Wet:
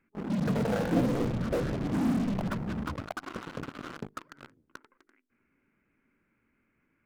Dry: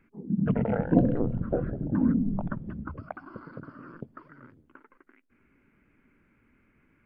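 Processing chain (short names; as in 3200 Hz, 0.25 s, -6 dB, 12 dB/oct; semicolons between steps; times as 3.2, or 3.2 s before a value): low shelf 100 Hz -7 dB; notches 50/100/150/200/250/300/350/400/450 Hz; in parallel at -12 dB: fuzz box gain 46 dB, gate -45 dBFS; on the sum: gain -6.5 dB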